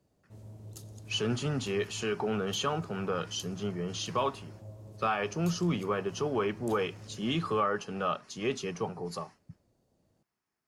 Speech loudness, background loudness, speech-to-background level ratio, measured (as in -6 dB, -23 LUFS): -32.5 LUFS, -49.0 LUFS, 16.5 dB